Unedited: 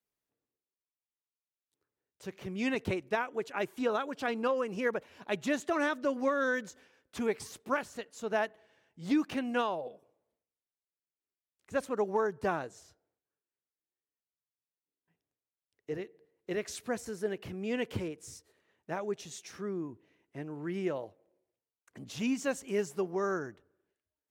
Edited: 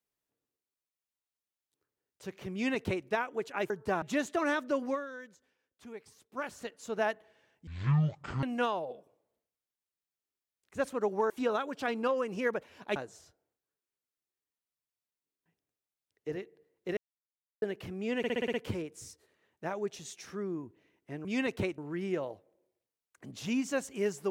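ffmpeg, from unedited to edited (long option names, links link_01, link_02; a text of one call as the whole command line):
ffmpeg -i in.wav -filter_complex "[0:a]asplit=19[link_01][link_02][link_03][link_04][link_05][link_06][link_07][link_08][link_09][link_10][link_11][link_12][link_13][link_14][link_15][link_16][link_17][link_18][link_19];[link_01]atrim=end=3.702[link_20];[link_02]atrim=start=12.258:end=12.582[link_21];[link_03]atrim=start=5.358:end=6.42,asetpts=PTS-STARTPTS,afade=type=out:start_time=0.812:duration=0.25:silence=0.188365[link_22];[link_04]atrim=start=6.42:end=7.65,asetpts=PTS-STARTPTS,volume=-14.5dB[link_23];[link_05]atrim=start=7.65:end=9.014,asetpts=PTS-STARTPTS,afade=type=in:duration=0.25:silence=0.188365[link_24];[link_06]atrim=start=9.01:end=9.39,asetpts=PTS-STARTPTS,asetrate=22050,aresample=44100[link_25];[link_07]atrim=start=9.386:end=12.262[link_26];[link_08]atrim=start=3.698:end=5.362[link_27];[link_09]atrim=start=12.578:end=16.59,asetpts=PTS-STARTPTS,afade=type=out:start_time=4.008:duration=0.004:curve=hsin[link_28];[link_10]atrim=start=16.59:end=17.24,asetpts=PTS-STARTPTS,volume=0[link_29];[link_11]atrim=start=17.24:end=17.862,asetpts=PTS-STARTPTS,afade=type=in:duration=0.004:curve=hsin[link_30];[link_12]atrim=start=17.798:end=17.862[link_31];[link_13]atrim=start=17.798:end=17.862[link_32];[link_14]atrim=start=17.798:end=17.862[link_33];[link_15]atrim=start=17.798:end=17.862[link_34];[link_16]atrim=start=17.798:end=17.862[link_35];[link_17]atrim=start=17.798:end=20.512[link_36];[link_18]atrim=start=2.528:end=3.062[link_37];[link_19]atrim=start=20.508[link_38];[link_20][link_21]acrossfade=duration=0.004:curve1=hsin:curve2=hsin[link_39];[link_22][link_23][link_24]concat=n=3:v=0:a=1[link_40];[link_39][link_40]acrossfade=duration=0.004:curve1=hsin:curve2=hsin[link_41];[link_41][link_25]acrossfade=duration=0.004:curve1=hsin:curve2=hsin[link_42];[link_42][link_26]acrossfade=duration=0.004:curve1=hsin:curve2=hsin[link_43];[link_43][link_27]acrossfade=duration=0.004:curve1=hsin:curve2=hsin[link_44];[link_28][link_29][link_30]concat=n=3:v=0:a=1[link_45];[link_44][link_45]acrossfade=duration=0.004:curve1=hsin:curve2=hsin[link_46];[link_46][link_31]acrossfade=duration=0.004:curve1=hsin:curve2=hsin[link_47];[link_47][link_32]acrossfade=duration=0.004:curve1=hsin:curve2=hsin[link_48];[link_48][link_33]acrossfade=duration=0.004:curve1=hsin:curve2=hsin[link_49];[link_49][link_34]acrossfade=duration=0.004:curve1=hsin:curve2=hsin[link_50];[link_50][link_35]acrossfade=duration=0.004:curve1=hsin:curve2=hsin[link_51];[link_51][link_36]acrossfade=duration=0.004:curve1=hsin:curve2=hsin[link_52];[link_52][link_37]acrossfade=duration=0.004:curve1=hsin:curve2=hsin[link_53];[link_53][link_38]acrossfade=duration=0.004:curve1=hsin:curve2=hsin" out.wav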